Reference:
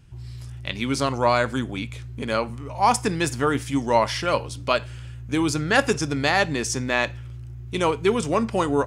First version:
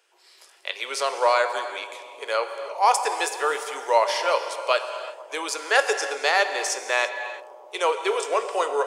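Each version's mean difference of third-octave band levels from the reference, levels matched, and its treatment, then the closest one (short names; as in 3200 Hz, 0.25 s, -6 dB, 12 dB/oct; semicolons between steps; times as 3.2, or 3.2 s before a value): 12.0 dB: steep high-pass 420 Hz 48 dB/oct; on a send: analogue delay 0.123 s, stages 1024, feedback 82%, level -16.5 dB; on the sum: non-linear reverb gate 0.37 s flat, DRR 8.5 dB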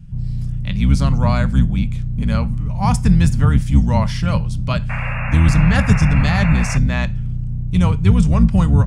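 9.0 dB: octaver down 2 oct, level +3 dB; painted sound noise, 4.89–6.78, 490–2800 Hz -25 dBFS; resonant low shelf 250 Hz +11 dB, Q 3; gain -2.5 dB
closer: second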